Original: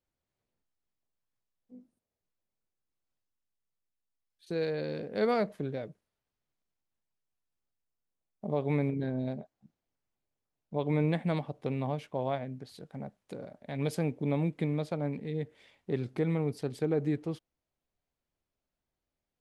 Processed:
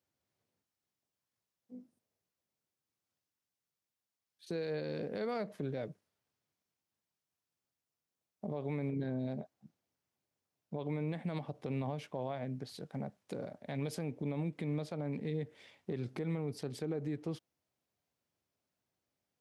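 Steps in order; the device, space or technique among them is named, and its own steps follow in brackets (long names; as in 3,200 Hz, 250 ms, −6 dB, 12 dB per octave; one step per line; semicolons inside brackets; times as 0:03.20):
broadcast voice chain (high-pass filter 82 Hz 24 dB per octave; de-essing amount 80%; downward compressor 3 to 1, threshold −34 dBFS, peak gain reduction 8 dB; parametric band 5,500 Hz +3 dB 0.46 octaves; brickwall limiter −30.5 dBFS, peak gain reduction 7 dB)
level +1.5 dB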